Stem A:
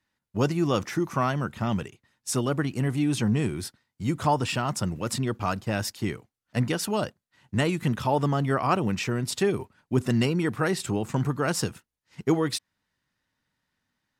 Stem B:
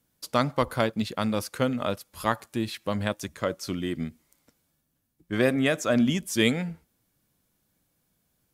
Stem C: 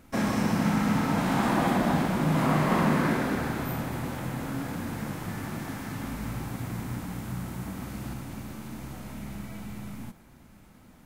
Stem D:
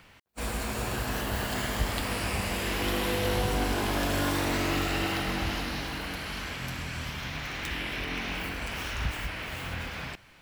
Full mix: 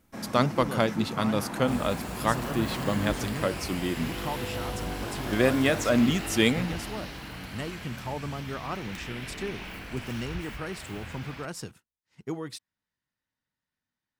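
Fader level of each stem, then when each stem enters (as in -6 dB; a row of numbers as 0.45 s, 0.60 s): -11.0 dB, 0.0 dB, -11.5 dB, -6.5 dB; 0.00 s, 0.00 s, 0.00 s, 1.30 s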